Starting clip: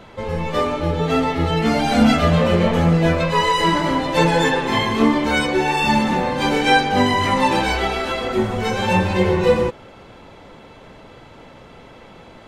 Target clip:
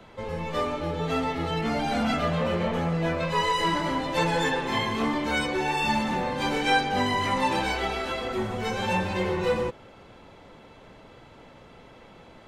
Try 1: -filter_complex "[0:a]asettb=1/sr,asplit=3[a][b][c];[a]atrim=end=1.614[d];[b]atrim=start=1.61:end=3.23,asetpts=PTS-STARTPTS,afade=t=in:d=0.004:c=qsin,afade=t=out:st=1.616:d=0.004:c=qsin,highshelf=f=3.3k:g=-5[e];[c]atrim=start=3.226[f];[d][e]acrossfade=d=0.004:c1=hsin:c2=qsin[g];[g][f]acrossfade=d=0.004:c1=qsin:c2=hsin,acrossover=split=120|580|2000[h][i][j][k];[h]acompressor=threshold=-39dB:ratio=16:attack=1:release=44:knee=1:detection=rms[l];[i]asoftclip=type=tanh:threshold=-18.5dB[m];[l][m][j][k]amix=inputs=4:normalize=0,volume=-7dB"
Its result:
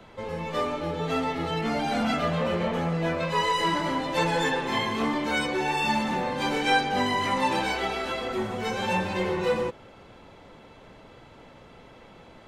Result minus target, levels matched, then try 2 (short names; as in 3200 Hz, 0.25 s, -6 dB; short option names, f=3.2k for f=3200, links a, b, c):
compressor: peak gain reduction +9 dB
-filter_complex "[0:a]asettb=1/sr,asplit=3[a][b][c];[a]atrim=end=1.614[d];[b]atrim=start=1.61:end=3.23,asetpts=PTS-STARTPTS,afade=t=in:d=0.004:c=qsin,afade=t=out:st=1.616:d=0.004:c=qsin,highshelf=f=3.3k:g=-5[e];[c]atrim=start=3.226[f];[d][e]acrossfade=d=0.004:c1=hsin:c2=qsin[g];[g][f]acrossfade=d=0.004:c1=qsin:c2=hsin,acrossover=split=120|580|2000[h][i][j][k];[h]acompressor=threshold=-29.5dB:ratio=16:attack=1:release=44:knee=1:detection=rms[l];[i]asoftclip=type=tanh:threshold=-18.5dB[m];[l][m][j][k]amix=inputs=4:normalize=0,volume=-7dB"